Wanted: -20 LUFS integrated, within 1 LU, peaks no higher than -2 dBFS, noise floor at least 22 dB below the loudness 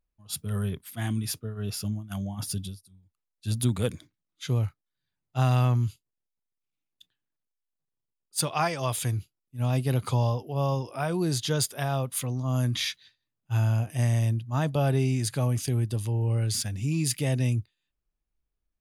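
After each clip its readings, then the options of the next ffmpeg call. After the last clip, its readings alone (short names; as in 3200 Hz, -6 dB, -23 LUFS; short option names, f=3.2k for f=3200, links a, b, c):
loudness -28.0 LUFS; peak -11.0 dBFS; loudness target -20.0 LUFS
-> -af "volume=8dB"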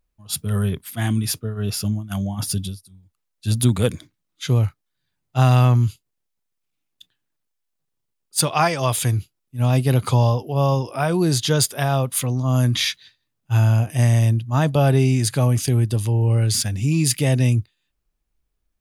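loudness -20.0 LUFS; peak -3.0 dBFS; noise floor -77 dBFS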